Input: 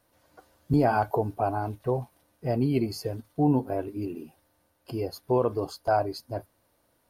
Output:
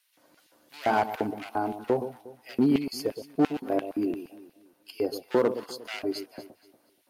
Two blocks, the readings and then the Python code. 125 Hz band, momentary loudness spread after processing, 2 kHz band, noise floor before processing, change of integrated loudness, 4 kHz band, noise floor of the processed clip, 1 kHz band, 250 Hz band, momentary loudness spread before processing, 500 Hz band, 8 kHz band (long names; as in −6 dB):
−11.5 dB, 13 LU, +2.0 dB, −70 dBFS, −1.0 dB, +3.5 dB, −68 dBFS, −2.5 dB, +0.5 dB, 12 LU, −1.0 dB, +2.0 dB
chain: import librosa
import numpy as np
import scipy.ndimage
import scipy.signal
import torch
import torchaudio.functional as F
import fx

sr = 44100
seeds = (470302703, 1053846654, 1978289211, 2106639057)

y = fx.clip_asym(x, sr, top_db=-24.0, bottom_db=-17.5)
y = fx.filter_lfo_highpass(y, sr, shape='square', hz=2.9, low_hz=250.0, high_hz=2600.0, q=1.6)
y = fx.echo_alternate(y, sr, ms=119, hz=950.0, feedback_pct=55, wet_db=-10.0)
y = F.gain(torch.from_numpy(y), 1.5).numpy()